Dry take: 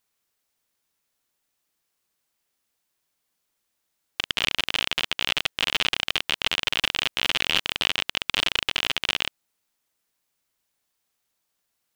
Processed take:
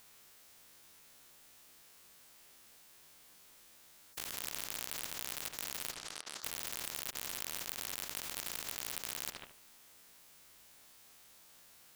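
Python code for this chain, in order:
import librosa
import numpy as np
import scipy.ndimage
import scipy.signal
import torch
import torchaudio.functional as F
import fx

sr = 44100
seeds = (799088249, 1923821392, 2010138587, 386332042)

p1 = fx.spec_steps(x, sr, hold_ms=50)
p2 = fx.level_steps(p1, sr, step_db=11)
p3 = p1 + (p2 * 10.0 ** (0.0 / 20.0))
p4 = np.clip(10.0 ** (13.0 / 20.0) * p3, -1.0, 1.0) / 10.0 ** (13.0 / 20.0)
p5 = fx.double_bandpass(p4, sr, hz=2400.0, octaves=1.8, at=(5.9, 6.43), fade=0.02)
p6 = fx.echo_filtered(p5, sr, ms=73, feedback_pct=27, hz=2200.0, wet_db=-14)
p7 = fx.spectral_comp(p6, sr, ratio=10.0)
y = p7 * 10.0 ** (-3.0 / 20.0)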